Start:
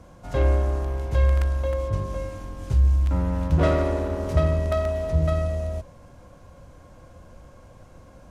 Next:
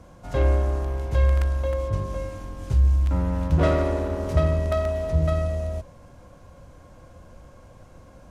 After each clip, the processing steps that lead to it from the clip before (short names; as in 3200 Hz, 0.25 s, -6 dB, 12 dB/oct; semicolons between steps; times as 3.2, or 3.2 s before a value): nothing audible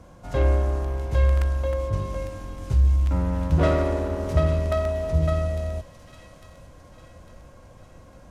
thin delay 0.852 s, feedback 48%, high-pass 2500 Hz, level -9 dB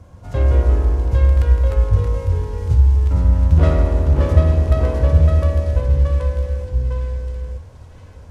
bell 90 Hz +13 dB 0.86 oct; echoes that change speed 0.129 s, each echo -2 st, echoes 2; gain -1 dB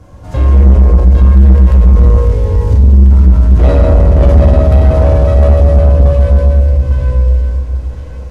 reverb RT60 2.6 s, pre-delay 4 ms, DRR -3.5 dB; soft clip -5.5 dBFS, distortion -11 dB; gain +4.5 dB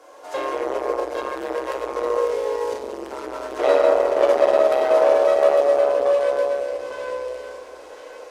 inverse Chebyshev high-pass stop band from 200 Hz, stop band 40 dB